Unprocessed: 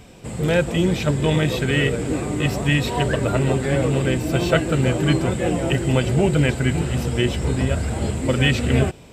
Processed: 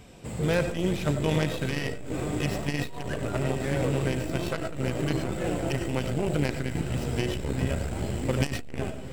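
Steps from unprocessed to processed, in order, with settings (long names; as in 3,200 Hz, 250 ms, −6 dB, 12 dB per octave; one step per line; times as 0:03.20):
stylus tracing distortion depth 0.15 ms
feedback delay with all-pass diffusion 950 ms, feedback 59%, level −14.5 dB
on a send at −8.5 dB: convolution reverb RT60 0.40 s, pre-delay 50 ms
on the sum: saturating transformer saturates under 250 Hz
level −5 dB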